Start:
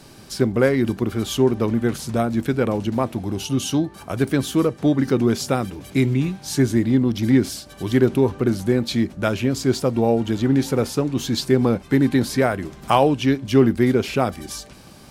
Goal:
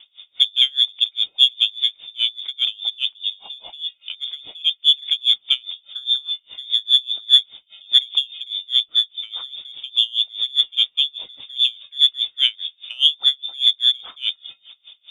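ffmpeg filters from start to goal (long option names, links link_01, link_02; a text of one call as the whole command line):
ffmpeg -i in.wav -af "lowpass=frequency=3100:width_type=q:width=0.5098,lowpass=frequency=3100:width_type=q:width=0.6013,lowpass=frequency=3100:width_type=q:width=0.9,lowpass=frequency=3100:width_type=q:width=2.563,afreqshift=-3700,aexciter=amount=6:drive=2.5:freq=2600,aeval=exprs='val(0)*pow(10,-28*(0.5-0.5*cos(2*PI*4.9*n/s))/20)':channel_layout=same,volume=-7.5dB" out.wav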